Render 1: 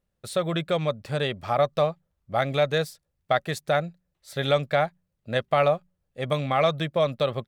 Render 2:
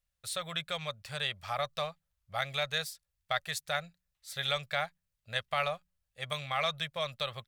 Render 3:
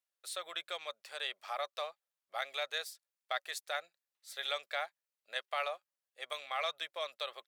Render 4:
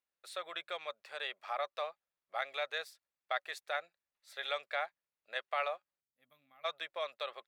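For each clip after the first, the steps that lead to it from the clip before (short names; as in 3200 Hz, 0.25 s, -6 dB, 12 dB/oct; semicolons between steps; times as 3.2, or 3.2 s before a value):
passive tone stack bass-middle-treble 10-0-10; gain +1 dB
Chebyshev high-pass 330 Hz, order 4; gain -4 dB
tone controls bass +3 dB, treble -12 dB; notch 3100 Hz, Q 22; spectral gain 6.01–6.65, 280–11000 Hz -28 dB; gain +1.5 dB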